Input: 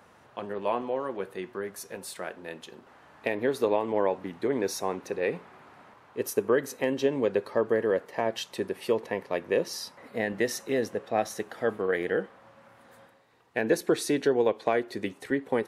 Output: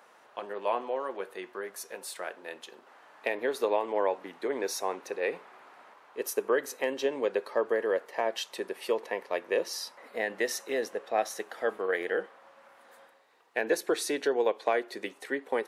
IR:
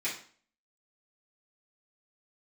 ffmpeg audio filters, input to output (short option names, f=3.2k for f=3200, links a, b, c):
-af "highpass=440"